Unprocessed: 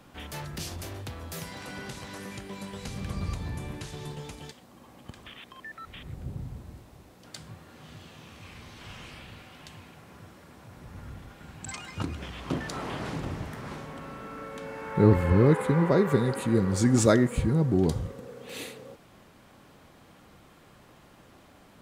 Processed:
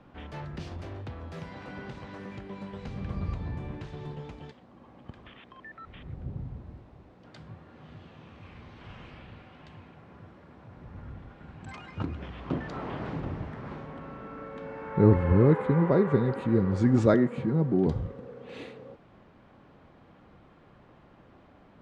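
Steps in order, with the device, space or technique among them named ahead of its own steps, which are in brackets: phone in a pocket (low-pass 3.8 kHz 12 dB/octave; treble shelf 2.2 kHz -10 dB); 17.14–17.87 s: high-pass 140 Hz 24 dB/octave

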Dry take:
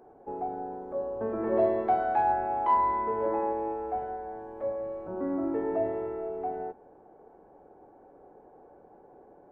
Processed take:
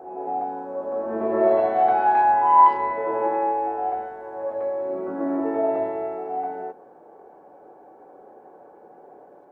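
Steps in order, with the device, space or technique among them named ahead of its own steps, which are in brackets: ghost voice (reverse; reverberation RT60 1.1 s, pre-delay 73 ms, DRR 1.5 dB; reverse; high-pass 450 Hz 6 dB/octave); trim +6.5 dB

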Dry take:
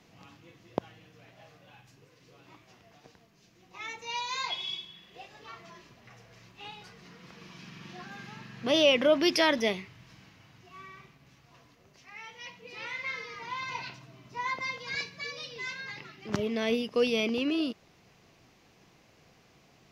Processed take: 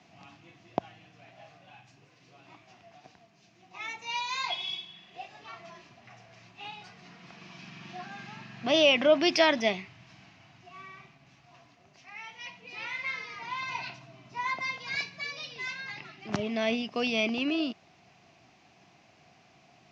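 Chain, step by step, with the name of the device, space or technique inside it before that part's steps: car door speaker (cabinet simulation 90–7000 Hz, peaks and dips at 480 Hz -9 dB, 710 Hz +9 dB, 2.5 kHz +4 dB)

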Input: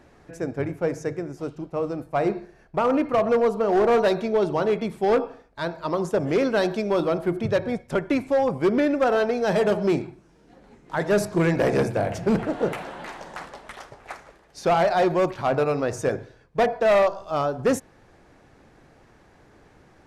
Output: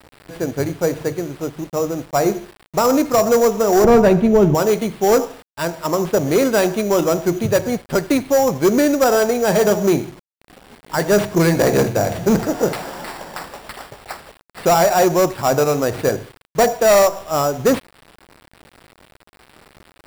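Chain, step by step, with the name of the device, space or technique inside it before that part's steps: early 8-bit sampler (sample-rate reducer 6.4 kHz, jitter 0%; bit crusher 8-bit); 3.84–4.55 s: tone controls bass +14 dB, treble -13 dB; trim +6 dB

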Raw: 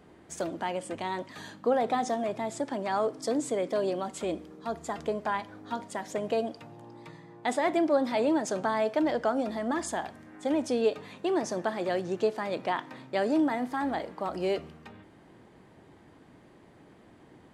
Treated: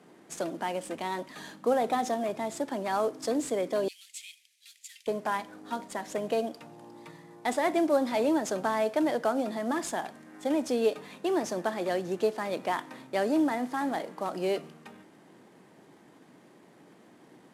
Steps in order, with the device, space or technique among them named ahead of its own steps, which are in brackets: early wireless headset (high-pass 150 Hz 24 dB/octave; CVSD coder 64 kbps); 3.88–5.07 s: steep high-pass 2.2 kHz 48 dB/octave

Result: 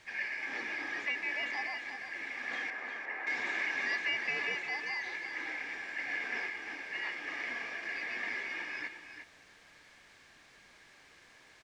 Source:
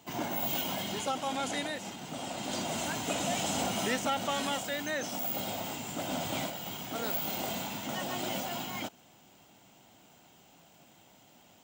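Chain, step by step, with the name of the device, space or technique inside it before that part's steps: split-band scrambled radio (four frequency bands reordered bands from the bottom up 3142; band-pass 360–3300 Hz; white noise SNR 18 dB); 2.70–3.27 s: three-band isolator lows -13 dB, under 340 Hz, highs -21 dB, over 2 kHz; distance through air 120 m; delay 353 ms -9 dB

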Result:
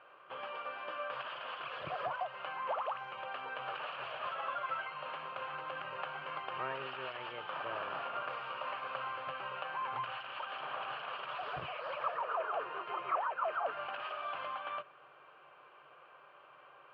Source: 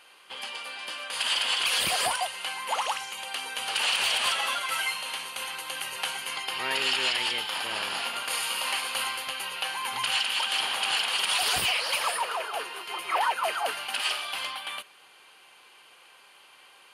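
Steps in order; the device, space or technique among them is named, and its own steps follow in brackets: bass amplifier (compression, threshold -32 dBFS, peak gain reduction 10 dB; cabinet simulation 79–2100 Hz, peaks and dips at 140 Hz +10 dB, 220 Hz -10 dB, 600 Hz +8 dB, 850 Hz -4 dB, 1.2 kHz +6 dB, 2 kHz -10 dB); trim -1 dB

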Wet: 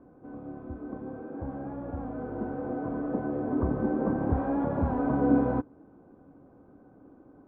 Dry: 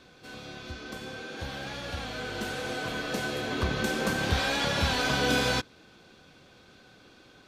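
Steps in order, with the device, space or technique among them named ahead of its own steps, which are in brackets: under water (low-pass 1 kHz 24 dB/octave; peaking EQ 280 Hz +10.5 dB 0.38 oct)

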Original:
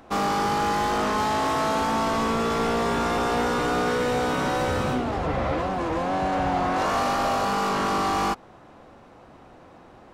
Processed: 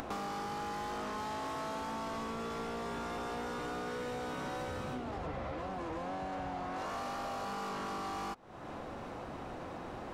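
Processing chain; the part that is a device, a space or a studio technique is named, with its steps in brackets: upward and downward compression (upward compressor, threshold -27 dBFS; compression 6:1, threshold -32 dBFS, peak gain reduction 11 dB); trim -5 dB

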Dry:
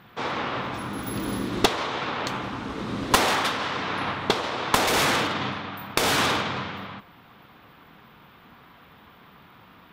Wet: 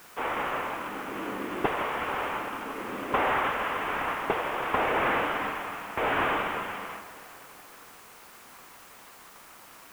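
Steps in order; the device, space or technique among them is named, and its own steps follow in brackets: army field radio (band-pass 380–3100 Hz; CVSD coder 16 kbps; white noise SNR 22 dB); echo whose repeats swap between lows and highs 164 ms, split 1.5 kHz, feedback 75%, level -14 dB

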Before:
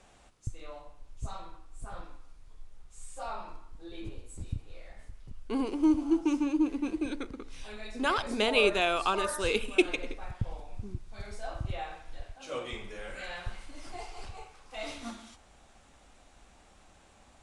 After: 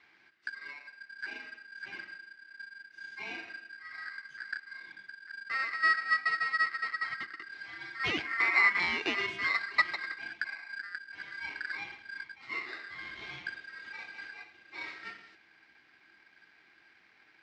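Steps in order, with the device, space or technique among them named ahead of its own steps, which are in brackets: ring modulator pedal into a guitar cabinet (polarity switched at an audio rate 1.6 kHz; cabinet simulation 91–4400 Hz, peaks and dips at 330 Hz +9 dB, 530 Hz -7 dB, 920 Hz -4 dB, 2.1 kHz +9 dB); 8.25–8.80 s: graphic EQ 125/2000/4000 Hz -9/+4/-8 dB; trim -5.5 dB

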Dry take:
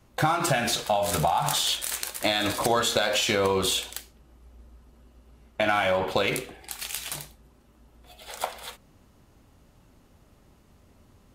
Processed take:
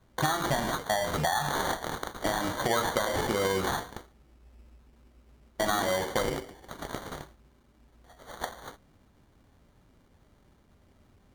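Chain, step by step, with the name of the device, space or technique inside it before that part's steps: crushed at another speed (playback speed 0.5×; sample-and-hold 34×; playback speed 2×); trim -4 dB

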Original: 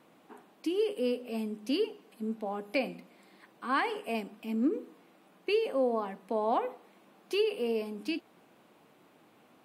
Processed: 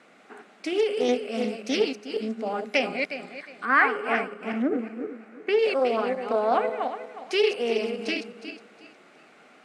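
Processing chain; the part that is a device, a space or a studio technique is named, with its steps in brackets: backward echo that repeats 181 ms, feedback 50%, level -5.5 dB; 3.65–5.59 s: resonant high shelf 2.5 kHz -8.5 dB, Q 1.5; full-range speaker at full volume (loudspeaker Doppler distortion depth 0.24 ms; cabinet simulation 260–8500 Hz, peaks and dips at 320 Hz -7 dB, 510 Hz -3 dB, 970 Hz -10 dB, 1.4 kHz +5 dB, 2.1 kHz +5 dB, 3.3 kHz -3 dB); trim +8.5 dB

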